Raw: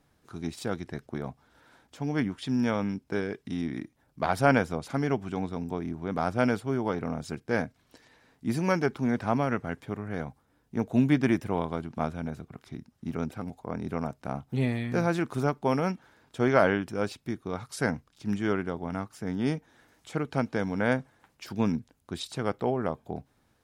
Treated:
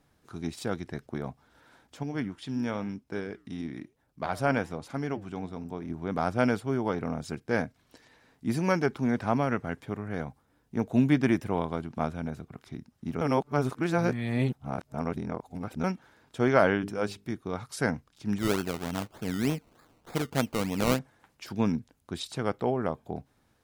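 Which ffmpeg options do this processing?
-filter_complex "[0:a]asettb=1/sr,asplit=3[s0][s1][s2];[s0]atrim=end=2.034[s3];[s1]atrim=start=2.03:end=5.9,asetpts=PTS-STARTPTS,afade=t=in:d=0.004:c=qsin,afade=t=out:st=3.866:d=0.004:c=qsin,flanger=delay=1.9:depth=8.1:regen=-89:speed=1:shape=triangular[s4];[s2]atrim=start=5.896[s5];[s3][s4]acrossfade=d=0.004:c1=hsin:c2=qsin[s6];[s6][s5]acrossfade=d=0.004:c1=qsin:c2=hsin,asplit=3[s7][s8][s9];[s7]afade=t=out:st=16.82:d=0.02[s10];[s8]bandreject=f=50:t=h:w=6,bandreject=f=100:t=h:w=6,bandreject=f=150:t=h:w=6,bandreject=f=200:t=h:w=6,bandreject=f=250:t=h:w=6,bandreject=f=300:t=h:w=6,bandreject=f=350:t=h:w=6,bandreject=f=400:t=h:w=6,bandreject=f=450:t=h:w=6,afade=t=in:st=16.82:d=0.02,afade=t=out:st=17.31:d=0.02[s11];[s9]afade=t=in:st=17.31:d=0.02[s12];[s10][s11][s12]amix=inputs=3:normalize=0,asettb=1/sr,asplit=3[s13][s14][s15];[s13]atrim=end=18.384[s16];[s14]atrim=start=18.38:end=20.99,asetpts=PTS-STARTPTS,afade=t=in:d=0.004:c=qsin,afade=t=out:st=2.606:d=0.004:c=qsin,acrusher=samples=21:mix=1:aa=0.000001:lfo=1:lforange=12.6:lforate=3.3[s17];[s15]atrim=start=20.986[s18];[s16][s17]acrossfade=d=0.004:c1=hsin:c2=qsin[s19];[s19][s18]acrossfade=d=0.004:c1=qsin:c2=hsin,asplit=3[s20][s21][s22];[s20]atrim=end=13.212[s23];[s21]atrim=start=13.208:end=15.842,asetpts=PTS-STARTPTS,areverse[s24];[s22]atrim=start=15.838[s25];[s23][s24]acrossfade=d=0.004:c1=hsin:c2=hsin[s26];[s26][s25]acrossfade=d=0.004:c1=hsin:c2=hsin"

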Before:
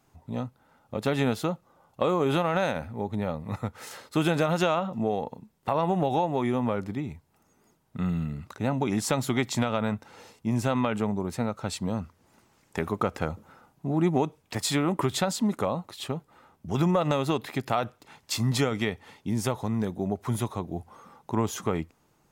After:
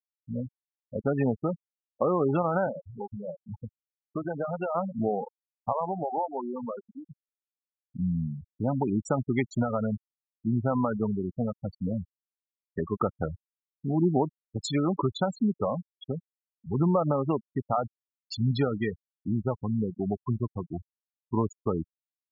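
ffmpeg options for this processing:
-filter_complex "[0:a]asettb=1/sr,asplit=3[s0][s1][s2];[s0]atrim=end=2.674[s3];[s1]atrim=start=2.67:end=4.75,asetpts=PTS-STARTPTS,afade=t=in:d=0.004:c=qsin,afade=t=out:st=2.076:d=0.004:c=qsin,acrossover=split=480|1000[s4][s5][s6];[s4]acompressor=threshold=0.0178:ratio=4[s7];[s5]acompressor=threshold=0.0282:ratio=4[s8];[s6]acompressor=threshold=0.02:ratio=4[s9];[s7][s8][s9]amix=inputs=3:normalize=0[s10];[s2]atrim=start=4.746[s11];[s3][s10]acrossfade=d=0.004:c1=hsin:c2=qsin[s12];[s12][s11]acrossfade=d=0.004:c1=qsin:c2=hsin,asettb=1/sr,asplit=3[s13][s14][s15];[s13]atrim=end=5.724[s16];[s14]atrim=start=5.72:end=7.1,asetpts=PTS-STARTPTS,afade=t=in:d=0.004:c=qsin,afade=t=out:st=1.376:d=0.004:c=qsin,lowshelf=f=460:g=-10[s17];[s15]atrim=start=7.096[s18];[s16][s17]acrossfade=d=0.004:c1=hsin:c2=qsin[s19];[s19][s18]acrossfade=d=0.004:c1=qsin:c2=hsin,afftfilt=real='re*gte(hypot(re,im),0.1)':imag='im*gte(hypot(re,im),0.1)':win_size=1024:overlap=0.75"

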